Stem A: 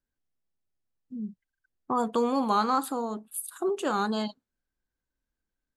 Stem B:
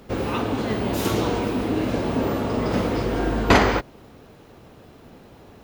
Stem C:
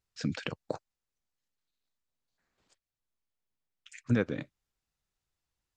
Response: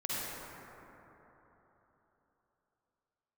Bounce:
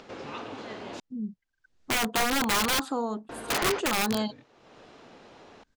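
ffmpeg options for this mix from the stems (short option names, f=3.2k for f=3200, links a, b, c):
-filter_complex "[0:a]volume=1.5dB[a];[1:a]highpass=f=600:p=1,volume=-9.5dB,asplit=3[b][c][d];[b]atrim=end=1,asetpts=PTS-STARTPTS,afade=t=out:st=0.996:d=0.004:c=hsin[e];[c]atrim=start=1:end=3.29,asetpts=PTS-STARTPTS,volume=0[f];[d]atrim=start=3.29,asetpts=PTS-STARTPTS,afade=t=in:d=0.004:c=hsin[g];[e][f][g]concat=n=3:v=0:a=1[h];[2:a]asplit=2[i][j];[j]adelay=3.8,afreqshift=-0.52[k];[i][k]amix=inputs=2:normalize=1,volume=-13.5dB[l];[a][h][l]amix=inputs=3:normalize=0,lowpass=f=7.1k:w=0.5412,lowpass=f=7.1k:w=1.3066,acompressor=mode=upward:threshold=-40dB:ratio=2.5,aeval=exprs='(mod(9.44*val(0)+1,2)-1)/9.44':c=same"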